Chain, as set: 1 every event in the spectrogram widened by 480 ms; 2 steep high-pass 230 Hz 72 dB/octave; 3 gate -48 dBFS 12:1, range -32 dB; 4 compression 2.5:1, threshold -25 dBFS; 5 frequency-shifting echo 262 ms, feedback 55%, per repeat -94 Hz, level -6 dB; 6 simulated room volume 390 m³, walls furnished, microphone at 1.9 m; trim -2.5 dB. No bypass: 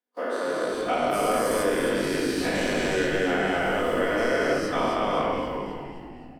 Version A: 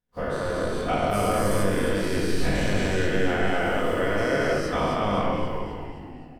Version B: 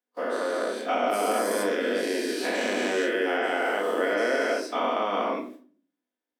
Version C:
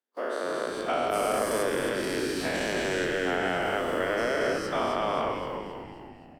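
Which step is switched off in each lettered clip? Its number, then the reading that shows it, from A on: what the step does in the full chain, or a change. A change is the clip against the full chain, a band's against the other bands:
2, 125 Hz band +9.5 dB; 5, echo-to-direct 2.0 dB to -0.5 dB; 6, loudness change -3.0 LU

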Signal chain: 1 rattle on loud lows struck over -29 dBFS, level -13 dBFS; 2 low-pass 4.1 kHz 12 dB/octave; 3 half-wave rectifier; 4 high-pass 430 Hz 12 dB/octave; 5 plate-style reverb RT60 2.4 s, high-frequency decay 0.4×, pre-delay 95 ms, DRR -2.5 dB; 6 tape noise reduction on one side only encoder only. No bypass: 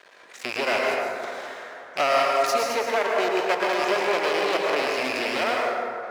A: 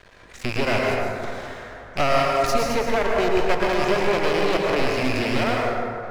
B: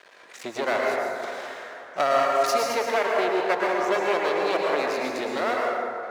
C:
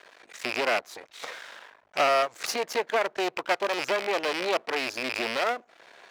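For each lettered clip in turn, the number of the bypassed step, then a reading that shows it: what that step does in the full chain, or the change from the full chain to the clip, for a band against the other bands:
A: 4, 250 Hz band +7.5 dB; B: 1, 4 kHz band -4.5 dB; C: 5, loudness change -4.0 LU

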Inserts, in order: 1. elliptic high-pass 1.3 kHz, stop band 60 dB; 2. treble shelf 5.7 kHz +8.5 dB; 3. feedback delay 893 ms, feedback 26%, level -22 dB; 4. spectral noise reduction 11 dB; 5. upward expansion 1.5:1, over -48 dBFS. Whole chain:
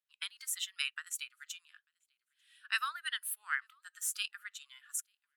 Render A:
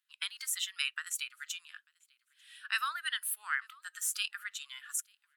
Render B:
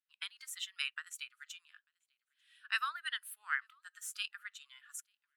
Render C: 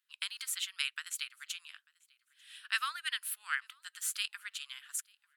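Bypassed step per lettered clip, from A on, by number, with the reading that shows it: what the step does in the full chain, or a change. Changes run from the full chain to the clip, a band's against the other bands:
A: 5, crest factor change -2.5 dB; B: 2, 8 kHz band -7.5 dB; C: 4, 4 kHz band +2.5 dB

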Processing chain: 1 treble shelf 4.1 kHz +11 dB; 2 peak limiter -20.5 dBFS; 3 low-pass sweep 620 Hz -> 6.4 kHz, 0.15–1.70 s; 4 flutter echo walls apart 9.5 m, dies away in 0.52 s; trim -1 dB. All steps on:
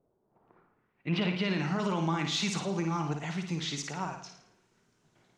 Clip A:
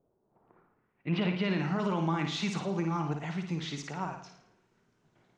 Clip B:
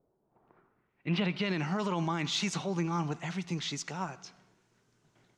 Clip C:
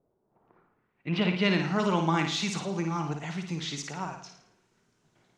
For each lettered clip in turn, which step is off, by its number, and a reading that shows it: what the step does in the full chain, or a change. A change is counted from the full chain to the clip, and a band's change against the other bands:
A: 1, 8 kHz band -8.0 dB; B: 4, echo-to-direct -5.5 dB to none; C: 2, crest factor change +4.0 dB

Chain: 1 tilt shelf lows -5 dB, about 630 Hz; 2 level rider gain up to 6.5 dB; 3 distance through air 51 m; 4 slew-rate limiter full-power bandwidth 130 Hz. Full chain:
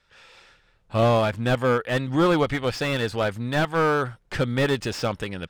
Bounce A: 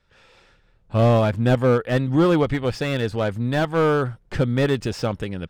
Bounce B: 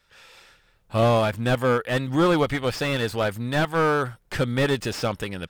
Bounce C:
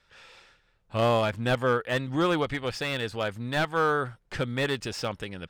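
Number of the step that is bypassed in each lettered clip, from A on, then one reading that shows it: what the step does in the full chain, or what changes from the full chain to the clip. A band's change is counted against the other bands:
1, 125 Hz band +6.5 dB; 3, 8 kHz band +1.5 dB; 2, loudness change -4.0 LU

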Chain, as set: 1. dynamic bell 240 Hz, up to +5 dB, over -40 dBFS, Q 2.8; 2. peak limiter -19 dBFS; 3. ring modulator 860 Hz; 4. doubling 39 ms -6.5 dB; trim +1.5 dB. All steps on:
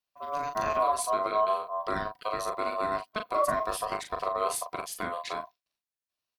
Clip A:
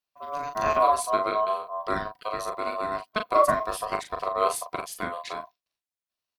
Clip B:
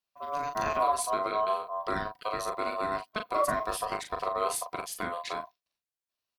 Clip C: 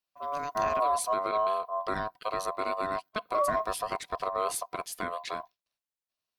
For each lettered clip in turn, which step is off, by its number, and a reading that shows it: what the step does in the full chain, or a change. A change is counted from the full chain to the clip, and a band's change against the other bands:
2, crest factor change +4.0 dB; 1, 500 Hz band -2.0 dB; 4, crest factor change -2.5 dB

